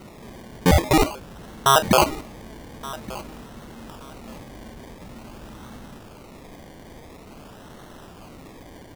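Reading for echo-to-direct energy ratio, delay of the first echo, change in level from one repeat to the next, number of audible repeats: -18.5 dB, 1.173 s, -13.0 dB, 2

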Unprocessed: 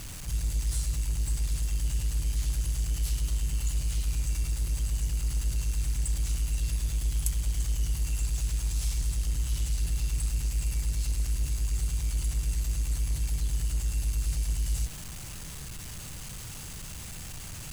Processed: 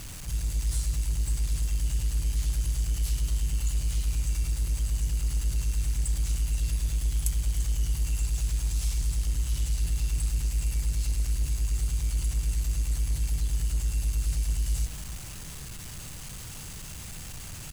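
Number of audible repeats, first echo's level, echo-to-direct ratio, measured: 1, -13.5 dB, -13.5 dB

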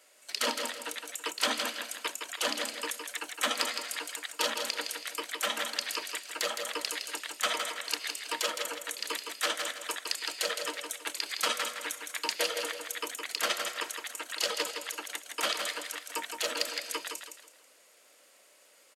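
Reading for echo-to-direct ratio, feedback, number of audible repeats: -5.5 dB, 32%, 3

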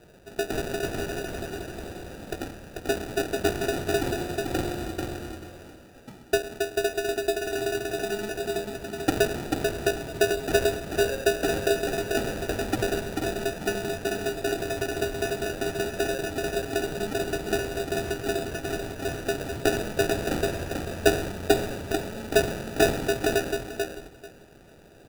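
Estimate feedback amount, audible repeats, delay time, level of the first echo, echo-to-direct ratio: 17%, 3, 0.44 s, -4.0 dB, -4.0 dB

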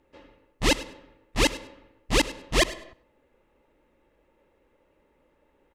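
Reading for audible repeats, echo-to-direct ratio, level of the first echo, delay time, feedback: 2, -18.0 dB, -18.0 dB, 0.101 s, 17%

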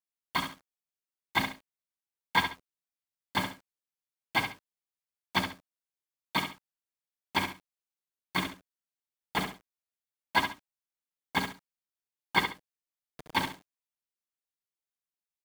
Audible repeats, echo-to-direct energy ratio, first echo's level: 2, -7.5 dB, -8.0 dB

